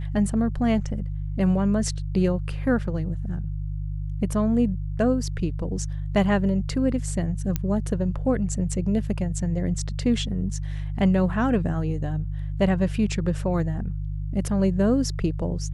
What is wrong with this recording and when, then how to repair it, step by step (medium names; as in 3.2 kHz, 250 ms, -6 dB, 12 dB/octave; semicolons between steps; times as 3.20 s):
hum 50 Hz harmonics 3 -29 dBFS
7.56 s: pop -11 dBFS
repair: de-click; de-hum 50 Hz, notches 3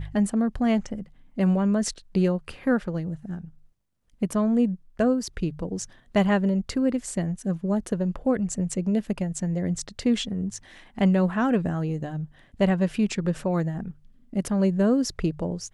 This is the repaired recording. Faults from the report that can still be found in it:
nothing left